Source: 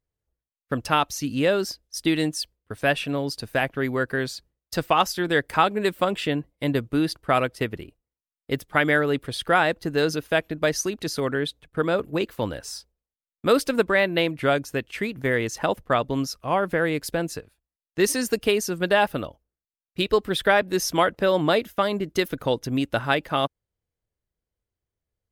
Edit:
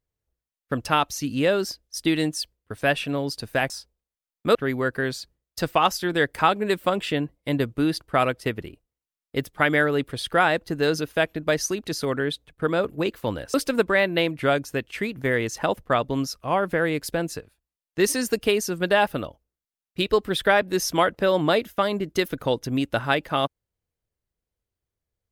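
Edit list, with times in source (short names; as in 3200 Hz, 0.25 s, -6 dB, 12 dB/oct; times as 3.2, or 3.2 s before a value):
12.69–13.54 move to 3.7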